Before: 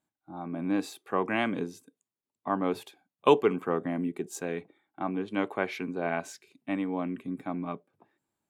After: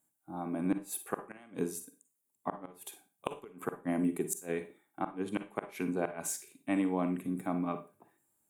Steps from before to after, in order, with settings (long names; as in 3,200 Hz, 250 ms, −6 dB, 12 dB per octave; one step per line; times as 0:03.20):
high shelf with overshoot 6,600 Hz +13.5 dB, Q 1.5
gate with flip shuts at −18 dBFS, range −28 dB
four-comb reverb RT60 0.31 s, DRR 9.5 dB